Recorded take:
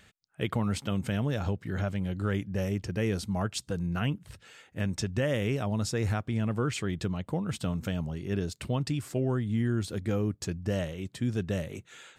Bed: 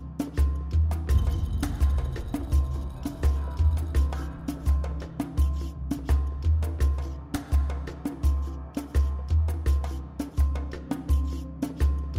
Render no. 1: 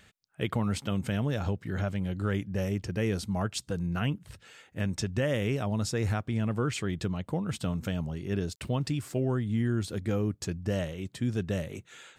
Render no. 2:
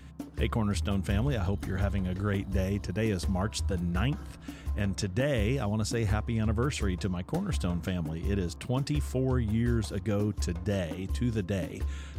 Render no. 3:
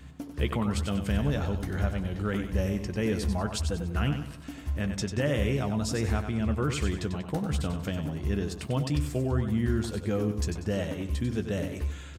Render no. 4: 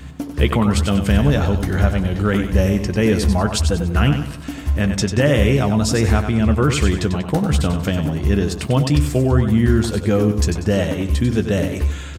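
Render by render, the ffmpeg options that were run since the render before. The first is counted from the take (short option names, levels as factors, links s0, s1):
-filter_complex "[0:a]asettb=1/sr,asplit=3[s0][s1][s2];[s0]atrim=end=8.554[s3];[s1]atrim=start=8.55:end=9.25,asetpts=PTS-STARTPTS,afade=t=in:d=0.004:c=qsin,afade=t=out:st=0.696:d=0.004:c=qsin,aeval=exprs='val(0)*gte(abs(val(0)),0.00141)':c=same[s4];[s2]atrim=start=9.246[s5];[s3][s4]acrossfade=d=0.004:c1=hsin:c2=qsin[s6];[s6][s5]acrossfade=d=0.004:c1=qsin:c2=hsin"
-filter_complex "[1:a]volume=0.316[s0];[0:a][s0]amix=inputs=2:normalize=0"
-filter_complex "[0:a]asplit=2[s0][s1];[s1]adelay=14,volume=0.282[s2];[s0][s2]amix=inputs=2:normalize=0,aecho=1:1:95|190|285|380:0.398|0.147|0.0545|0.0202"
-af "volume=3.98"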